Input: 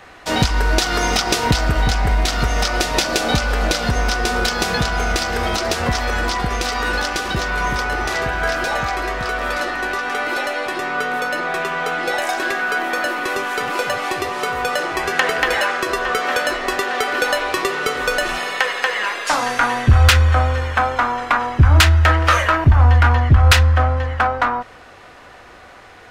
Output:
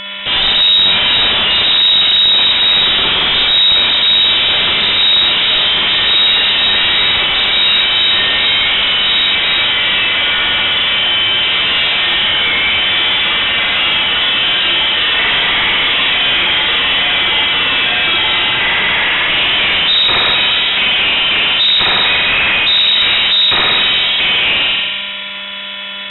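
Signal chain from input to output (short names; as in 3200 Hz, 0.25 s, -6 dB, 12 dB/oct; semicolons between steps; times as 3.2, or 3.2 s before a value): in parallel at -11 dB: Schmitt trigger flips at -29 dBFS; on the sum: spring tank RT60 1.3 s, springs 42 ms, chirp 30 ms, DRR -6.5 dB; soft clip -17.5 dBFS, distortion -5 dB; on a send: flutter echo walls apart 10.2 m, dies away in 0.21 s; on the sum: buzz 400 Hz, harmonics 32, -32 dBFS -4 dB/oct; inverted band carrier 3800 Hz; gain +6.5 dB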